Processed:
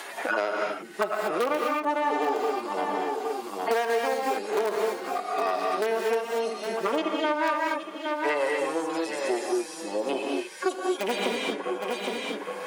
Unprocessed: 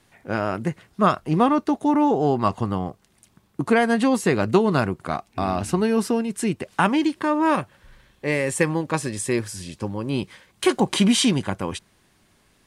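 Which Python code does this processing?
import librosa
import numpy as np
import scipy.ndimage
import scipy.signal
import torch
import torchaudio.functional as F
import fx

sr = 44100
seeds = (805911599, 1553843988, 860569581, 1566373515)

p1 = fx.hpss_only(x, sr, part='harmonic')
p2 = (np.mod(10.0 ** (12.0 / 20.0) * p1 + 1.0, 2.0) - 1.0) / 10.0 ** (12.0 / 20.0)
p3 = p1 + (p2 * librosa.db_to_amplitude(-11.5))
p4 = fx.tube_stage(p3, sr, drive_db=15.0, bias=0.7)
p5 = scipy.signal.sosfilt(scipy.signal.butter(4, 420.0, 'highpass', fs=sr, output='sos'), p4)
p6 = p5 + fx.echo_single(p5, sr, ms=814, db=-14.0, dry=0)
p7 = fx.rev_gated(p6, sr, seeds[0], gate_ms=260, shape='rising', drr_db=-0.5)
y = fx.band_squash(p7, sr, depth_pct=100)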